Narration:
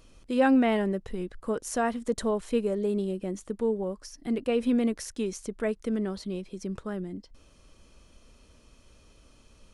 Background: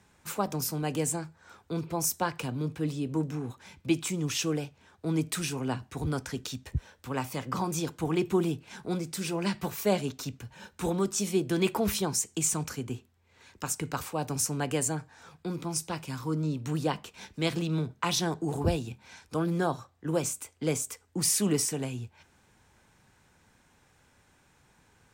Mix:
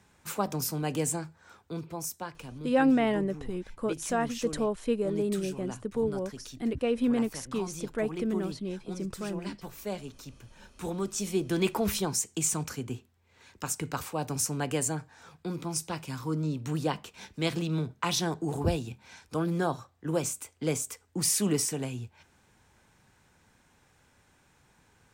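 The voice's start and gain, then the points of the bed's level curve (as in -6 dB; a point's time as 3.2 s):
2.35 s, -1.5 dB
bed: 1.36 s 0 dB
2.28 s -9.5 dB
10.23 s -9.5 dB
11.55 s -0.5 dB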